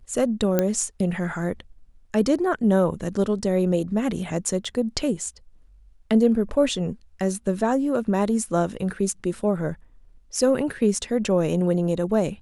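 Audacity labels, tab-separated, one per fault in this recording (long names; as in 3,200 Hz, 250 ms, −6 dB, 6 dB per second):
0.590000	0.590000	click −7 dBFS
4.650000	4.650000	drop-out 3.6 ms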